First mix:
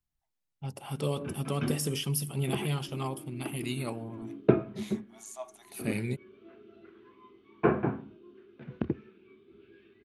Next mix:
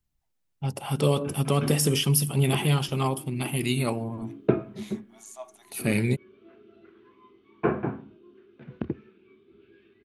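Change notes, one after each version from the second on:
first voice +8.5 dB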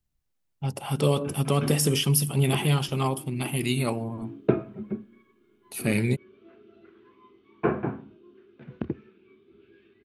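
second voice: muted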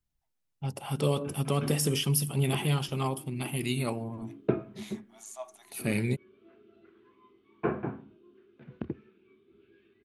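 first voice -4.5 dB; second voice: unmuted; background -5.0 dB

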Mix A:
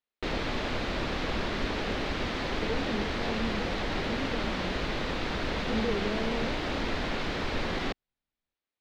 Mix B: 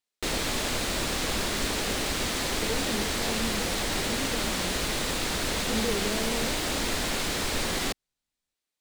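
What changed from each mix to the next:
master: remove distance through air 250 m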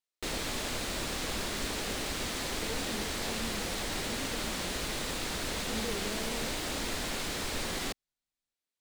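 speech -8.0 dB; background -6.0 dB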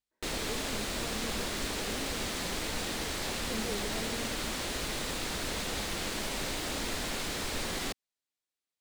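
speech: entry -2.20 s

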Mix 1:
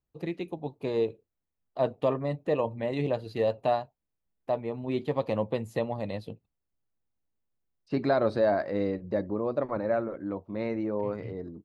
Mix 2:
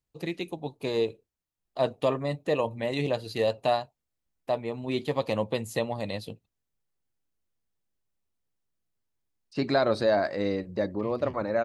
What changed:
second voice: entry +1.65 s; master: add peaking EQ 8.9 kHz +14 dB 2.8 oct

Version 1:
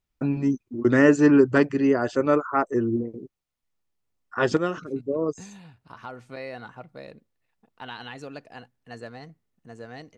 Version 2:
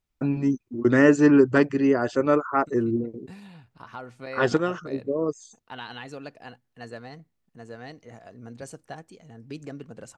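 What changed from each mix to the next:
second voice: entry -2.10 s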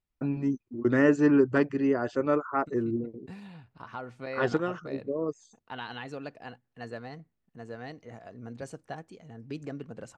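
first voice -5.0 dB; master: add treble shelf 5.5 kHz -9.5 dB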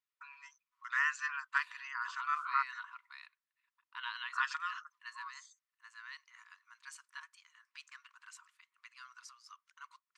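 second voice: entry -1.75 s; master: add brick-wall FIR high-pass 940 Hz

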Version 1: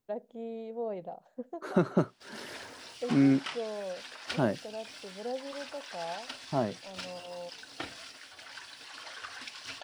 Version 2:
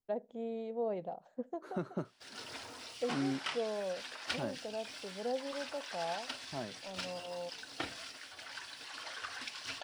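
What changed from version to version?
second voice -12.0 dB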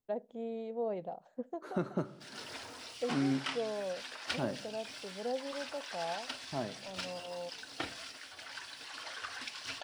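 reverb: on, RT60 1.2 s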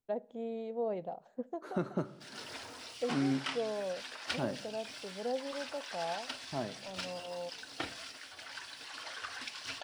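first voice: send on

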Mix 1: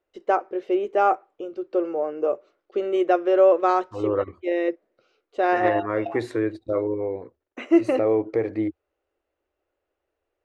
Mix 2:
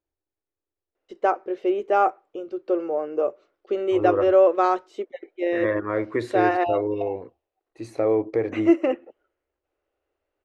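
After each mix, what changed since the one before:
first voice: entry +0.95 s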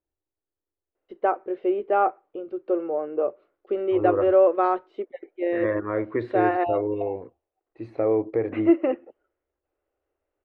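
master: add distance through air 400 m

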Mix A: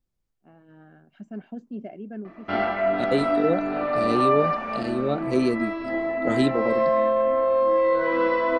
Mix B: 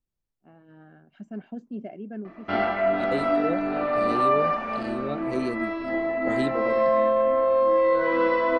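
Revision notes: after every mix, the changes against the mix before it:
second voice -6.5 dB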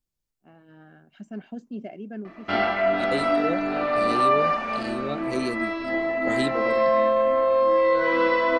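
master: add treble shelf 2.7 kHz +11 dB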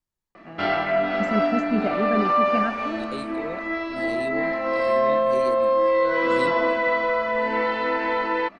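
first voice +11.0 dB; second voice -6.0 dB; background: entry -1.90 s

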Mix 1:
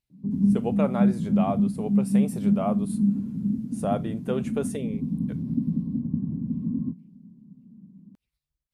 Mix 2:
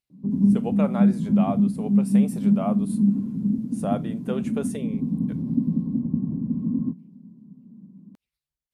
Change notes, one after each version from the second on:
background +7.5 dB; master: add bass shelf 180 Hz -11 dB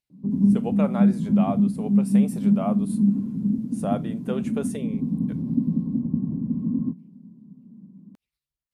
no change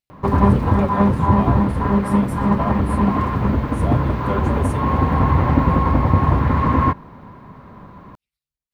background: remove Butterworth band-pass 210 Hz, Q 2.5

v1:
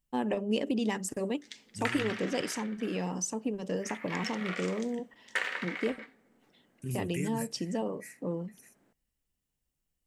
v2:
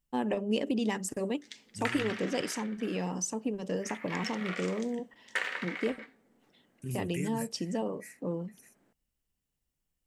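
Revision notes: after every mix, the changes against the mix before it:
reverb: off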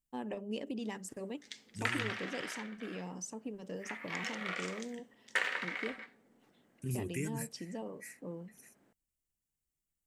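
first voice -9.5 dB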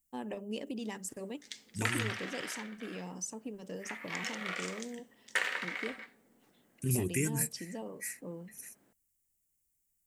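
second voice +5.5 dB; master: add treble shelf 6.5 kHz +9 dB

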